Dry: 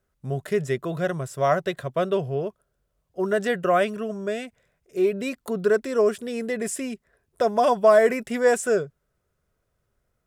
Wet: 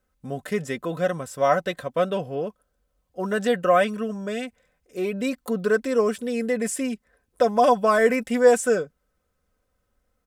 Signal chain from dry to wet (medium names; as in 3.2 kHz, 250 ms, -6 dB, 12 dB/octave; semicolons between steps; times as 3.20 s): comb 3.9 ms, depth 63%